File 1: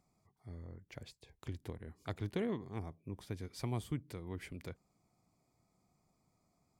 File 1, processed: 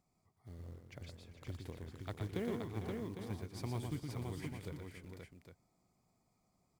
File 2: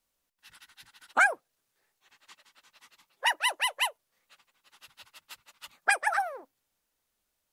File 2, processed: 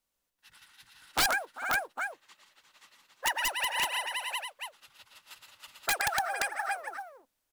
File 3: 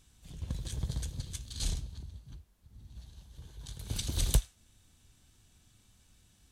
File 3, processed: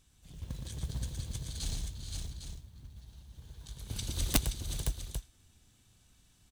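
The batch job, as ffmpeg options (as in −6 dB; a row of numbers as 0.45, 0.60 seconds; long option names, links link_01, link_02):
-af "acrusher=bits=6:mode=log:mix=0:aa=0.000001,aecho=1:1:117|393|451|524|805:0.562|0.141|0.282|0.631|0.355,aeval=exprs='(mod(5.96*val(0)+1,2)-1)/5.96':channel_layout=same,volume=-3.5dB"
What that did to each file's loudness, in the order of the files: −1.0, −3.5, −1.0 LU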